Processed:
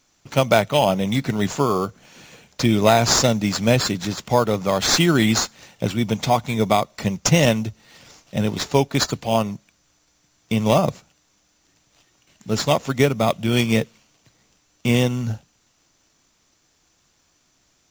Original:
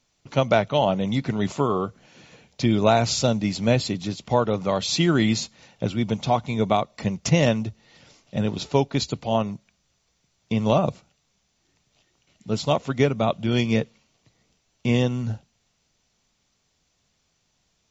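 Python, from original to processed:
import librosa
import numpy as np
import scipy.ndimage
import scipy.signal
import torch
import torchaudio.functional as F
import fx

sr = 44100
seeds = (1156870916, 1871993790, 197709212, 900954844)

p1 = fx.high_shelf(x, sr, hz=2500.0, db=11.0)
p2 = fx.sample_hold(p1, sr, seeds[0], rate_hz=5700.0, jitter_pct=0)
p3 = p1 + (p2 * librosa.db_to_amplitude(-5.0))
y = p3 * librosa.db_to_amplitude(-1.5)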